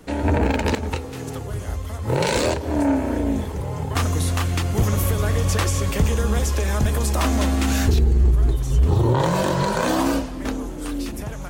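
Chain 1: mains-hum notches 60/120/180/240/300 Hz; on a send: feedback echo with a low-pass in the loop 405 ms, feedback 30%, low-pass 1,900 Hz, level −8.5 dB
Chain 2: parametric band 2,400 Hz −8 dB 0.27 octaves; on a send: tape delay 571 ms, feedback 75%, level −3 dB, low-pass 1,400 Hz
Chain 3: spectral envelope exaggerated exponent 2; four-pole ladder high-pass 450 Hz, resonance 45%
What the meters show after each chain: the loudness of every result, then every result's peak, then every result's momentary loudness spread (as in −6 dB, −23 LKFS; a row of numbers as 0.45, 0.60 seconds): −22.0, −21.0, −33.5 LKFS; −7.0, −6.0, −15.0 dBFS; 9, 7, 20 LU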